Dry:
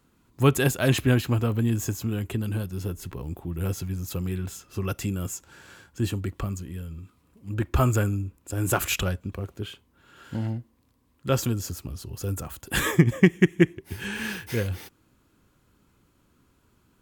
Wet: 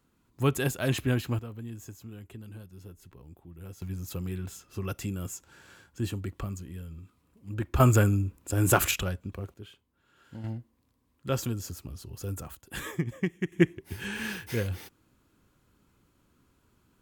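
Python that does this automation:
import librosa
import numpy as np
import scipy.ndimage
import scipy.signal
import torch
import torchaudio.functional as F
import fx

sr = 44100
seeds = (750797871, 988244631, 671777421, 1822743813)

y = fx.gain(x, sr, db=fx.steps((0.0, -6.0), (1.39, -16.0), (3.82, -5.0), (7.8, 2.0), (8.91, -4.5), (9.54, -12.0), (10.44, -5.5), (12.55, -12.5), (13.52, -3.0)))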